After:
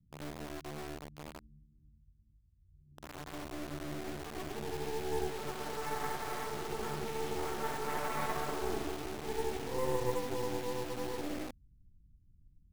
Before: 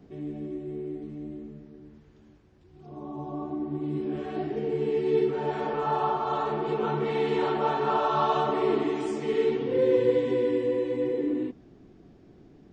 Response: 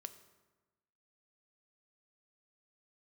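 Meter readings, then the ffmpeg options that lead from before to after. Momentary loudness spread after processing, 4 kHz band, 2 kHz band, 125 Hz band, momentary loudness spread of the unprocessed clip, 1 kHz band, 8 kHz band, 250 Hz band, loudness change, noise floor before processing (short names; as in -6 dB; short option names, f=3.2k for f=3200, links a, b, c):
10 LU, -3.0 dB, -3.5 dB, -7.5 dB, 13 LU, -10.5 dB, n/a, -12.5 dB, -11.0 dB, -55 dBFS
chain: -filter_complex "[0:a]lowpass=f=2.4k:p=1,asubboost=boost=3.5:cutoff=66,acrossover=split=150[a][b];[b]acrusher=bits=3:dc=4:mix=0:aa=0.000001[c];[a][c]amix=inputs=2:normalize=0,volume=-6.5dB"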